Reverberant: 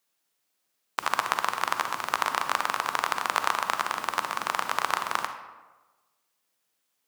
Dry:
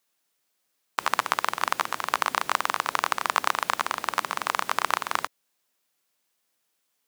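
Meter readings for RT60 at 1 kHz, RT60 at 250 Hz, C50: 1.2 s, 1.2 s, 8.0 dB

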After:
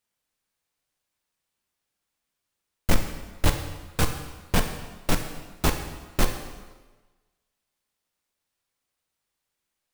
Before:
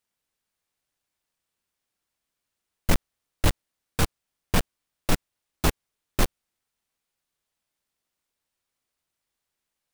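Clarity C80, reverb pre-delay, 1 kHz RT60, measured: 9.0 dB, 10 ms, 1.3 s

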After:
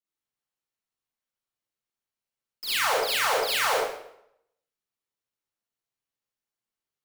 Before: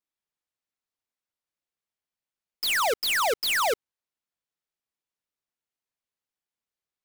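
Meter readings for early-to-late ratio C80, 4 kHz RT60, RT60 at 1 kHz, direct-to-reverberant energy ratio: 2.0 dB, 0.60 s, 0.70 s, −8.5 dB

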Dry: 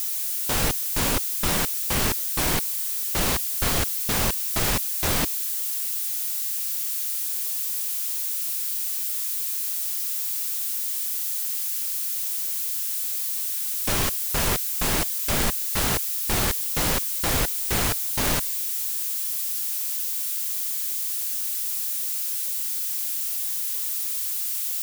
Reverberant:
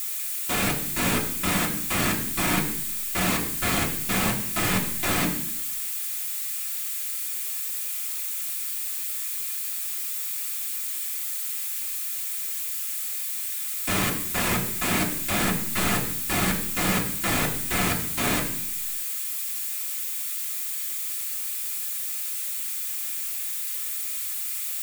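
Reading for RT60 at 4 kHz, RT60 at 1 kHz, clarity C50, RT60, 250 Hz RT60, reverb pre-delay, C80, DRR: 0.95 s, 0.70 s, 9.0 dB, 0.70 s, 0.85 s, 3 ms, 11.0 dB, −3.0 dB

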